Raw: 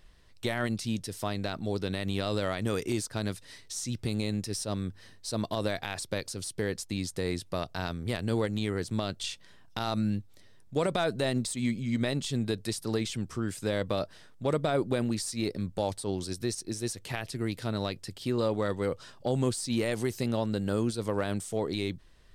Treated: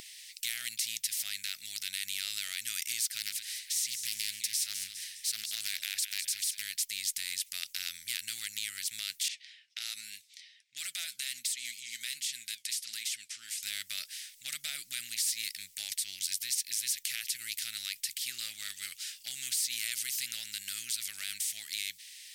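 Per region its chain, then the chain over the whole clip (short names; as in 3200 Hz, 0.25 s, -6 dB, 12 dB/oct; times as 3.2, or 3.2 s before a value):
3.18–6.62 echo with dull and thin repeats by turns 0.102 s, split 880 Hz, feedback 59%, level -10 dB + Doppler distortion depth 0.33 ms
9.28–13.63 low-pass opened by the level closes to 2200 Hz, open at -26 dBFS + HPF 170 Hz 6 dB/oct + flange 1.3 Hz, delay 2.4 ms, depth 3.9 ms, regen +75%
whole clip: elliptic high-pass 2100 Hz, stop band 50 dB; high shelf 4700 Hz +11.5 dB; spectral compressor 2:1; gain +2.5 dB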